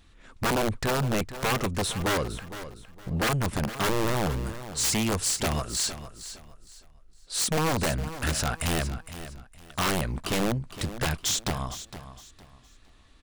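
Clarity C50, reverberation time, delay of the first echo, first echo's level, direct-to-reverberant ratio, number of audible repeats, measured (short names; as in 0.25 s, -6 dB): none, none, 0.461 s, -13.0 dB, none, 2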